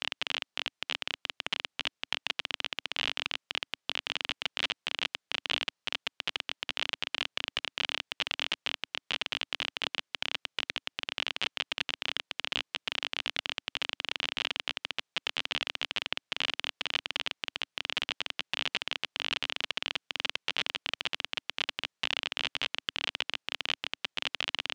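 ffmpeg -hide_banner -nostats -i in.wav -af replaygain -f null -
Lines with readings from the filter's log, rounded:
track_gain = +12.1 dB
track_peak = 0.278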